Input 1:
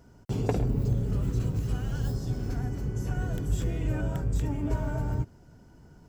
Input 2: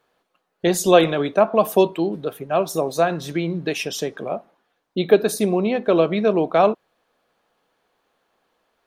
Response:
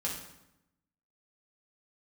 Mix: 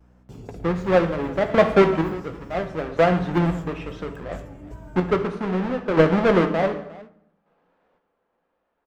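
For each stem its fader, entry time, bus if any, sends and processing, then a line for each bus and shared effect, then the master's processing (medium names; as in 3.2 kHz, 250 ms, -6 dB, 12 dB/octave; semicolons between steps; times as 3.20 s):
-11.5 dB, 0.00 s, send -15 dB, no echo send, hum 60 Hz, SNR 15 dB
-5.0 dB, 0.00 s, send -5.5 dB, echo send -18 dB, square wave that keeps the level; low-pass 1.9 kHz 12 dB/octave; square tremolo 0.67 Hz, depth 60%, duty 35%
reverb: on, RT60 0.85 s, pre-delay 3 ms
echo: delay 349 ms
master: vibrato 1.3 Hz 57 cents; peaking EQ 120 Hz -3 dB 0.87 oct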